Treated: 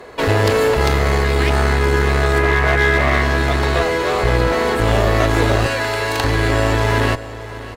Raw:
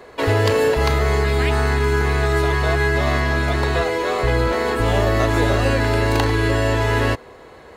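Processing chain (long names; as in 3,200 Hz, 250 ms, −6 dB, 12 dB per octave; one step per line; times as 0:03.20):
0:02.38–0:03.22: high shelf with overshoot 2,800 Hz −8 dB, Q 3
0:05.66–0:06.24: high-pass filter 800 Hz 6 dB per octave
asymmetric clip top −22.5 dBFS
single-tap delay 593 ms −15.5 dB
level +4.5 dB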